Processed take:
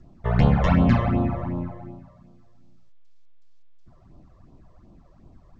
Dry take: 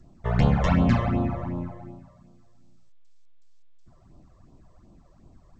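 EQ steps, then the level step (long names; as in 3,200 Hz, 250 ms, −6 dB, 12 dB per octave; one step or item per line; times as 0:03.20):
high-frequency loss of the air 99 metres
+2.5 dB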